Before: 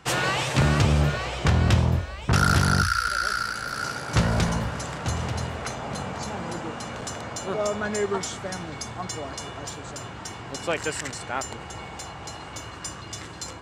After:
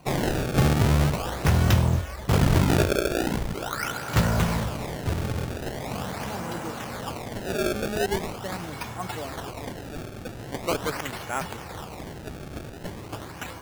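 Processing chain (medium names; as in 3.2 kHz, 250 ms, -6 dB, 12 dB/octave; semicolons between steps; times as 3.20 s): decimation with a swept rate 25×, swing 160% 0.42 Hz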